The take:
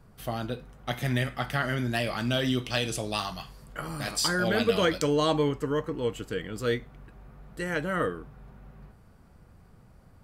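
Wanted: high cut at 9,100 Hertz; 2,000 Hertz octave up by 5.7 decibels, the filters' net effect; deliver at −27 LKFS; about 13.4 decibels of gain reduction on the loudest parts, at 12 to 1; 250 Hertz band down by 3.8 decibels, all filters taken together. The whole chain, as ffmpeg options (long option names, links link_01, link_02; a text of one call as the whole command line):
ffmpeg -i in.wav -af "lowpass=9100,equalizer=frequency=250:width_type=o:gain=-5,equalizer=frequency=2000:width_type=o:gain=7.5,acompressor=threshold=-32dB:ratio=12,volume=10dB" out.wav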